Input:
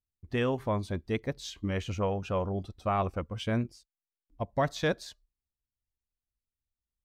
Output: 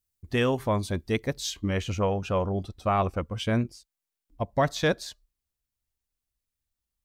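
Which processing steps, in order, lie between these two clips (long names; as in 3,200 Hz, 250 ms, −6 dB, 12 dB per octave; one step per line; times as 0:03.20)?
high-shelf EQ 5,100 Hz +11 dB, from 0:01.57 +4 dB
level +4 dB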